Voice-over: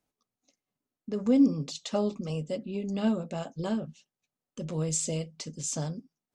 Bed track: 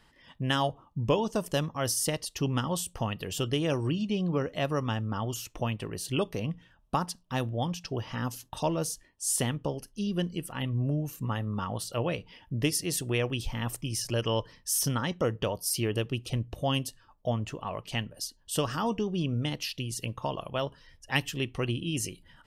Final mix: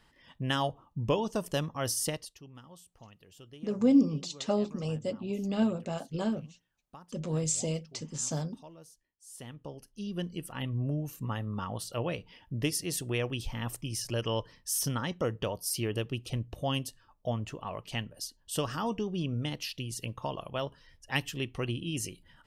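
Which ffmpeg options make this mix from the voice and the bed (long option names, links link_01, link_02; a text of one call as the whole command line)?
ffmpeg -i stem1.wav -i stem2.wav -filter_complex "[0:a]adelay=2550,volume=-0.5dB[link_01];[1:a]volume=16.5dB,afade=type=out:start_time=2.06:duration=0.34:silence=0.105925,afade=type=in:start_time=9.3:duration=1.21:silence=0.112202[link_02];[link_01][link_02]amix=inputs=2:normalize=0" out.wav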